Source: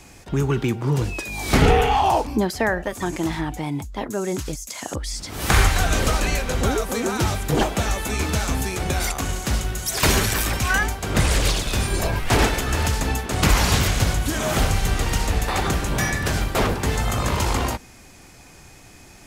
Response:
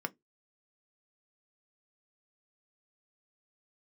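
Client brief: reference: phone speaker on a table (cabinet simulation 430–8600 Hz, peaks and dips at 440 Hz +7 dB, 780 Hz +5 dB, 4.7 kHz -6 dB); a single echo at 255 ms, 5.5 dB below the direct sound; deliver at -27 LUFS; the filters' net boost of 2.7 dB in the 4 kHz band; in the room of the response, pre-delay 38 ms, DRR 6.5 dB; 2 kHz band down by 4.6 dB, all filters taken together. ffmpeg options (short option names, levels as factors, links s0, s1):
-filter_complex "[0:a]equalizer=f=2000:t=o:g=-8.5,equalizer=f=4000:t=o:g=8.5,aecho=1:1:255:0.531,asplit=2[s0][s1];[1:a]atrim=start_sample=2205,adelay=38[s2];[s1][s2]afir=irnorm=-1:irlink=0,volume=0.355[s3];[s0][s3]amix=inputs=2:normalize=0,highpass=f=430:w=0.5412,highpass=f=430:w=1.3066,equalizer=f=440:t=q:w=4:g=7,equalizer=f=780:t=q:w=4:g=5,equalizer=f=4700:t=q:w=4:g=-6,lowpass=f=8600:w=0.5412,lowpass=f=8600:w=1.3066,volume=0.562"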